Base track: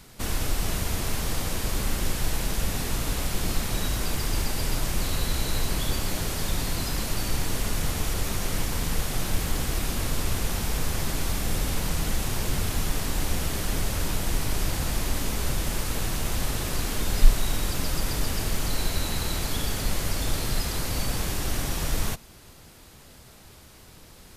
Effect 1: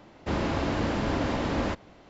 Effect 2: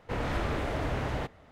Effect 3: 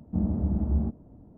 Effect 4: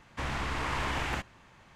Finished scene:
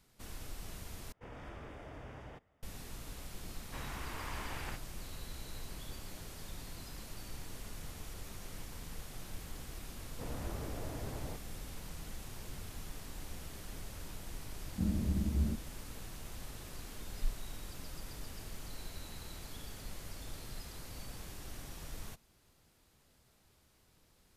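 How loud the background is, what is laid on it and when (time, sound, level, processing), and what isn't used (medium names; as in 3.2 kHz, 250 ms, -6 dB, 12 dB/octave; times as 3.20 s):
base track -19 dB
1.12 s: replace with 2 -17.5 dB + band-stop 4.1 kHz, Q 5.2
3.55 s: add 4 -11.5 dB
10.10 s: add 2 -17 dB + tilt shelf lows +7 dB, about 1.3 kHz
14.65 s: add 3 -6.5 dB + peaking EQ 1 kHz -14 dB 0.97 oct
not used: 1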